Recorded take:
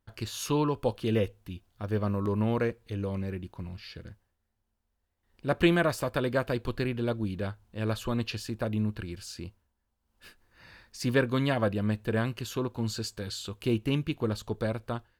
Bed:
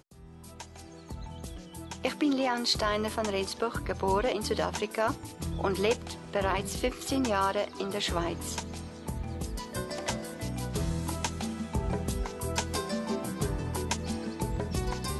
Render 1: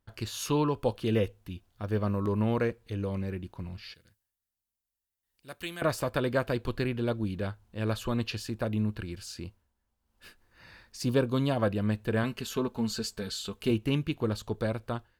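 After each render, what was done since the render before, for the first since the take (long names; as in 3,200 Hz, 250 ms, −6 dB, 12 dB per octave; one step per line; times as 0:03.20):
0:03.94–0:05.82: first-order pre-emphasis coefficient 0.9
0:11.02–0:11.59: parametric band 1,900 Hz −12 dB 0.72 octaves
0:12.23–0:13.71: comb filter 4.6 ms, depth 57%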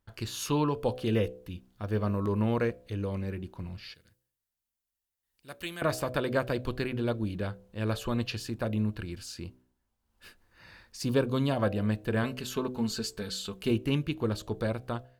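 hum removal 63.25 Hz, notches 12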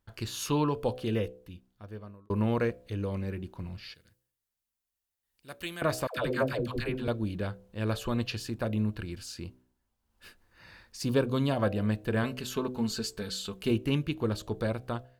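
0:00.75–0:02.30: fade out
0:06.07–0:07.08: all-pass dispersion lows, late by 108 ms, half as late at 530 Hz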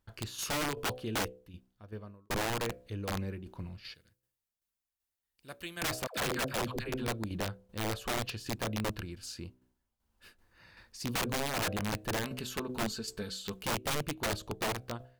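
shaped tremolo saw down 2.6 Hz, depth 60%
wrap-around overflow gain 26.5 dB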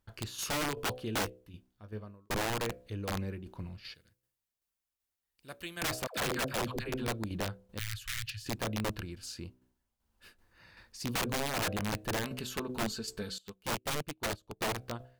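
0:01.14–0:02.04: double-tracking delay 19 ms −10 dB
0:07.79–0:08.46: Chebyshev band-stop filter 110–1,700 Hz, order 3
0:13.38–0:14.61: expander for the loud parts 2.5 to 1, over −45 dBFS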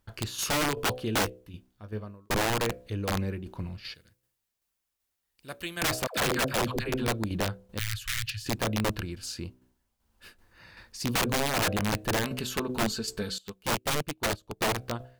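level +6 dB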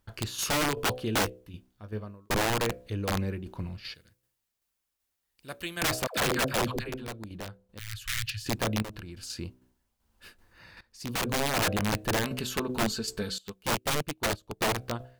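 0:06.69–0:08.14: duck −10.5 dB, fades 0.32 s
0:08.82–0:09.30: downward compressor 8 to 1, threshold −37 dBFS
0:10.81–0:11.46: fade in, from −17 dB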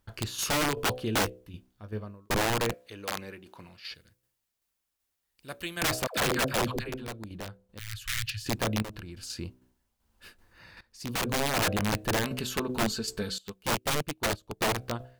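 0:02.74–0:03.91: high-pass filter 830 Hz 6 dB per octave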